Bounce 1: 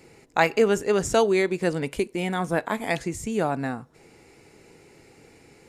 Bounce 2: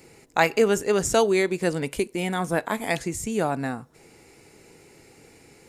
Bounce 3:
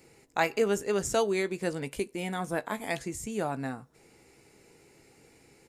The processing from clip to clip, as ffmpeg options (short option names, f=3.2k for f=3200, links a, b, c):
-af "highshelf=f=6.9k:g=8"
-filter_complex "[0:a]asplit=2[a][b];[b]adelay=15,volume=-13dB[c];[a][c]amix=inputs=2:normalize=0,volume=-7dB"